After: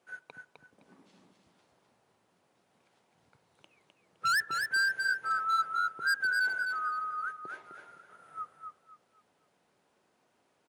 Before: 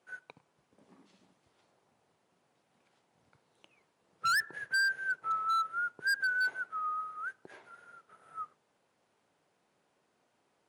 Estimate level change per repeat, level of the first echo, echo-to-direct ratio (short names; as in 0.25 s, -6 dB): -11.5 dB, -5.5 dB, -5.0 dB